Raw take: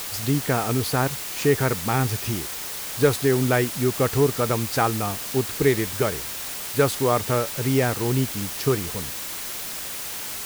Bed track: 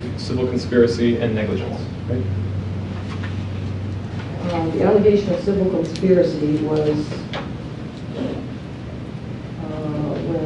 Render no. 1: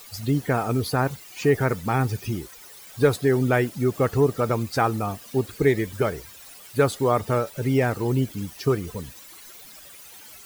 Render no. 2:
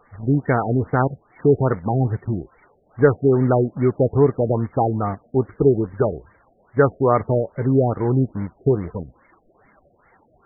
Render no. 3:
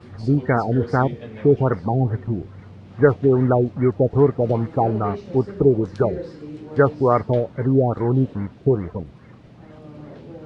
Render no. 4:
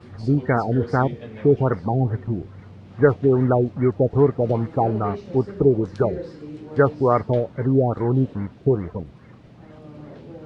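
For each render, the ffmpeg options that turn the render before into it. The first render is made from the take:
ffmpeg -i in.wav -af "afftdn=noise_reduction=16:noise_floor=-32" out.wav
ffmpeg -i in.wav -filter_complex "[0:a]asplit=2[link_01][link_02];[link_02]acrusher=bits=4:mix=0:aa=0.000001,volume=-4dB[link_03];[link_01][link_03]amix=inputs=2:normalize=0,afftfilt=real='re*lt(b*sr/1024,730*pow(2300/730,0.5+0.5*sin(2*PI*2.4*pts/sr)))':imag='im*lt(b*sr/1024,730*pow(2300/730,0.5+0.5*sin(2*PI*2.4*pts/sr)))':win_size=1024:overlap=0.75" out.wav
ffmpeg -i in.wav -i bed.wav -filter_complex "[1:a]volume=-16dB[link_01];[0:a][link_01]amix=inputs=2:normalize=0" out.wav
ffmpeg -i in.wav -af "volume=-1dB" out.wav

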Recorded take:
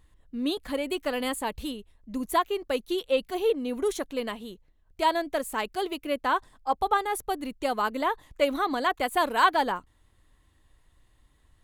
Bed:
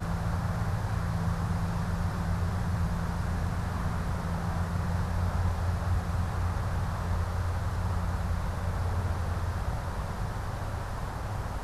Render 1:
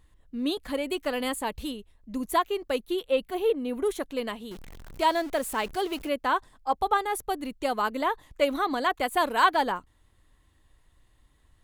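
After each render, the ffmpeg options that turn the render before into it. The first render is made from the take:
ffmpeg -i in.wav -filter_complex "[0:a]asettb=1/sr,asplit=3[link_01][link_02][link_03];[link_01]atrim=end=2.784[link_04];[link_02]atrim=start=2.78:end=4,asetpts=PTS-STARTPTS,afade=type=in:duration=0.004:curve=qsin,afade=type=out:start_time=1.216:duration=0.004:curve=qsin,equalizer=frequency=5700:width_type=o:width=1:gain=-8[link_05];[link_03]atrim=start=3.996[link_06];[link_04][link_05]acrossfade=duration=0.004:curve1=hsin:curve2=qsin[link_07];[link_07][link_06]acrossfade=duration=0.004:curve1=qsin:curve2=hsin,asettb=1/sr,asplit=3[link_08][link_09][link_10];[link_08]atrim=end=4.514[link_11];[link_09]atrim=start=4.51:end=6.09,asetpts=PTS-STARTPTS,afade=type=in:duration=0.004:curve=qsin,afade=type=out:start_time=1.576:duration=0.004:curve=qsin,aeval=exprs='val(0)+0.5*0.0119*sgn(val(0))':channel_layout=same[link_12];[link_10]atrim=start=6.086[link_13];[link_11][link_12]acrossfade=duration=0.004:curve1=hsin:curve2=qsin[link_14];[link_14][link_13]acrossfade=duration=0.004:curve1=qsin:curve2=hsin" out.wav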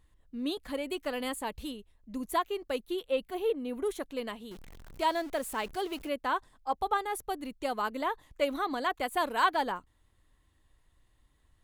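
ffmpeg -i in.wav -af "volume=-5dB" out.wav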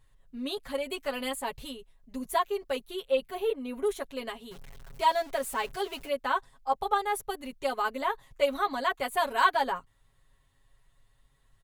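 ffmpeg -i in.wav -af "equalizer=frequency=300:width_type=o:width=0.29:gain=-13.5,aecho=1:1:7.3:0.88" out.wav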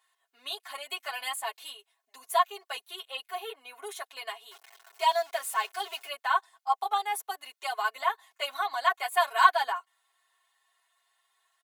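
ffmpeg -i in.wav -af "highpass=frequency=700:width=0.5412,highpass=frequency=700:width=1.3066,aecho=1:1:2.8:0.81" out.wav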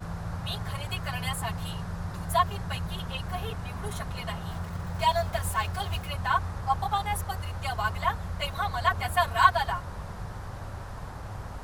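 ffmpeg -i in.wav -i bed.wav -filter_complex "[1:a]volume=-4.5dB[link_01];[0:a][link_01]amix=inputs=2:normalize=0" out.wav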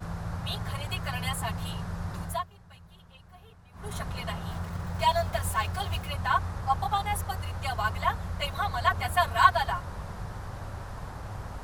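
ffmpeg -i in.wav -filter_complex "[0:a]asplit=3[link_01][link_02][link_03];[link_01]atrim=end=2.46,asetpts=PTS-STARTPTS,afade=type=out:start_time=2.21:duration=0.25:silence=0.112202[link_04];[link_02]atrim=start=2.46:end=3.72,asetpts=PTS-STARTPTS,volume=-19dB[link_05];[link_03]atrim=start=3.72,asetpts=PTS-STARTPTS,afade=type=in:duration=0.25:silence=0.112202[link_06];[link_04][link_05][link_06]concat=n=3:v=0:a=1" out.wav

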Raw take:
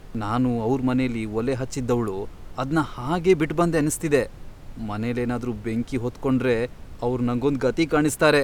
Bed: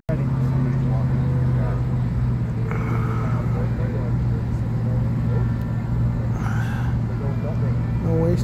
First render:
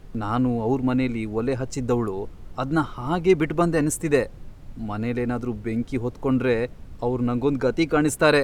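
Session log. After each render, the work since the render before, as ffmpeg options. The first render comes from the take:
ffmpeg -i in.wav -af "afftdn=noise_reduction=6:noise_floor=-41" out.wav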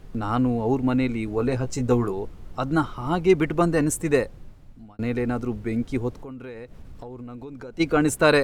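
ffmpeg -i in.wav -filter_complex "[0:a]asettb=1/sr,asplit=3[link_01][link_02][link_03];[link_01]atrim=end=1.264[link_04];[link_02]atrim=start=1.26:end=2.13,asetpts=PTS-STARTPTS,afade=type=in:duration=0.004:curve=qsin,afade=type=out:start_time=0.866:duration=0.004:curve=qsin,asplit=2[link_05][link_06];[link_06]adelay=16,volume=-6dB[link_07];[link_05][link_07]amix=inputs=2:normalize=0,atrim=end_sample=38367[link_08];[link_03]atrim=start=2.126[link_09];[link_04][link_08]acrossfade=duration=0.004:curve1=hsin:curve2=qsin[link_10];[link_10][link_09]acrossfade=duration=0.004:curve1=qsin:curve2=hsin,asplit=3[link_11][link_12][link_13];[link_11]afade=type=out:start_time=6.18:duration=0.02[link_14];[link_12]acompressor=threshold=-36dB:ratio=6:attack=3.2:release=140:knee=1:detection=peak,afade=type=in:start_time=6.18:duration=0.02,afade=type=out:start_time=7.79:duration=0.02[link_15];[link_13]afade=type=in:start_time=7.79:duration=0.02[link_16];[link_14][link_15][link_16]amix=inputs=3:normalize=0,asplit=2[link_17][link_18];[link_17]atrim=end=4.99,asetpts=PTS-STARTPTS,afade=type=out:start_time=3.9:duration=1.09:curve=qsin[link_19];[link_18]atrim=start=4.99,asetpts=PTS-STARTPTS,afade=type=in:duration=0.004:curve=hsin[link_20];[link_19][link_20]concat=n=2:v=0:a=1" out.wav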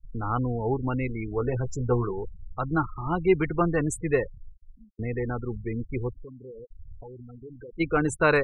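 ffmpeg -i in.wav -af "afftfilt=real='re*gte(hypot(re,im),0.0447)':imag='im*gte(hypot(re,im),0.0447)':win_size=1024:overlap=0.75,equalizer=frequency=250:width_type=o:width=0.67:gain=-9,equalizer=frequency=630:width_type=o:width=0.67:gain=-5,equalizer=frequency=4000:width_type=o:width=0.67:gain=-11,equalizer=frequency=10000:width_type=o:width=0.67:gain=-7" out.wav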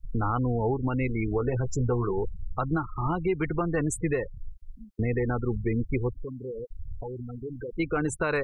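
ffmpeg -i in.wav -filter_complex "[0:a]asplit=2[link_01][link_02];[link_02]acompressor=threshold=-32dB:ratio=6,volume=1.5dB[link_03];[link_01][link_03]amix=inputs=2:normalize=0,alimiter=limit=-17.5dB:level=0:latency=1:release=245" out.wav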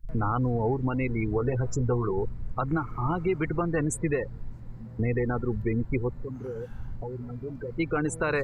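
ffmpeg -i in.wav -i bed.wav -filter_complex "[1:a]volume=-22dB[link_01];[0:a][link_01]amix=inputs=2:normalize=0" out.wav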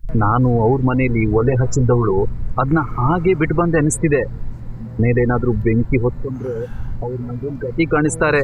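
ffmpeg -i in.wav -af "volume=11.5dB" out.wav

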